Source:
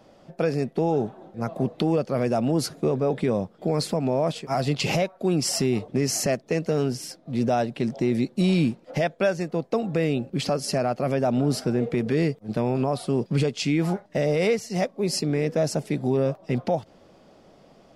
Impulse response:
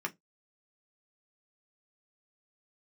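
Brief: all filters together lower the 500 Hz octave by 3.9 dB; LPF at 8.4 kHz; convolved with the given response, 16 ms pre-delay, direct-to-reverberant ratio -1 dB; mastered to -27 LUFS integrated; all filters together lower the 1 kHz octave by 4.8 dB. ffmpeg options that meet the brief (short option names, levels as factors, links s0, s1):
-filter_complex "[0:a]lowpass=8400,equalizer=f=500:t=o:g=-3.5,equalizer=f=1000:t=o:g=-5.5,asplit=2[s0][s1];[1:a]atrim=start_sample=2205,adelay=16[s2];[s1][s2]afir=irnorm=-1:irlink=0,volume=0.75[s3];[s0][s3]amix=inputs=2:normalize=0,volume=0.708"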